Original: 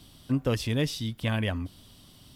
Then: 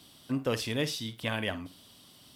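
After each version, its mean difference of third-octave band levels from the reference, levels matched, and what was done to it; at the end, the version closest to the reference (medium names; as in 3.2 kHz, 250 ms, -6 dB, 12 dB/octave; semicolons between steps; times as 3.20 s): 4.0 dB: high-pass 330 Hz 6 dB/octave; on a send: flutter echo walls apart 8.9 m, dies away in 0.24 s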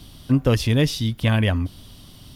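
1.5 dB: bass shelf 95 Hz +7 dB; band-stop 7.8 kHz, Q 14; trim +7 dB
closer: second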